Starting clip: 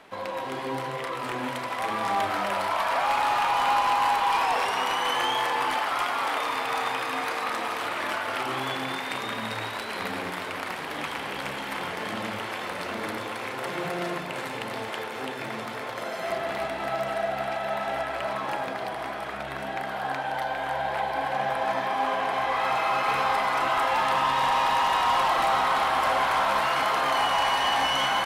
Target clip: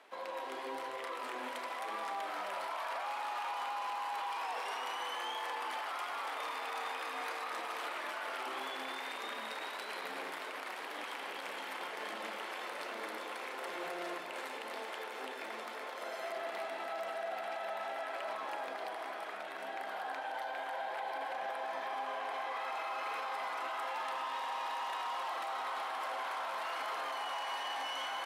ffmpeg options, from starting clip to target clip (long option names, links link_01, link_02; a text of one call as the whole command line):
ffmpeg -i in.wav -filter_complex "[0:a]acrossover=split=280[link_01][link_02];[link_01]acrusher=bits=4:mix=0:aa=0.000001[link_03];[link_02]alimiter=limit=-22.5dB:level=0:latency=1:release=32[link_04];[link_03][link_04]amix=inputs=2:normalize=0,volume=-8.5dB" out.wav